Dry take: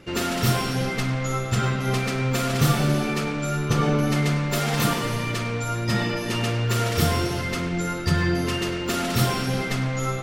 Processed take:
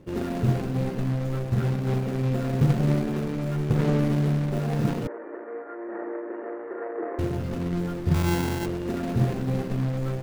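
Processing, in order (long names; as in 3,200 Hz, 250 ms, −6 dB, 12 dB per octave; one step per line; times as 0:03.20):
running median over 41 samples
0:05.07–0:07.19: Chebyshev band-pass filter 320–1,900 Hz, order 4
0:08.14–0:08.66: sample-rate reduction 1,200 Hz, jitter 0%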